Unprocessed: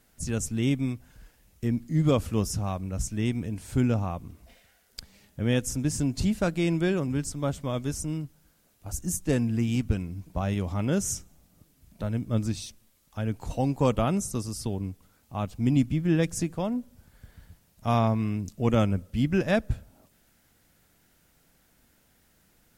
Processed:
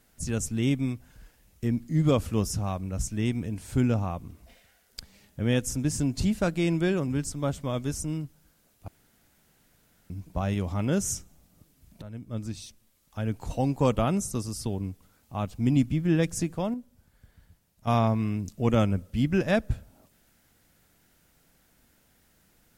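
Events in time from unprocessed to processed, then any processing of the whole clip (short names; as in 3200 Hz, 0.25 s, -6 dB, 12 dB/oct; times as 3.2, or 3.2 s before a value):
8.88–10.1 room tone
12.02–13.29 fade in linear, from -13.5 dB
16.74–17.87 gain -6.5 dB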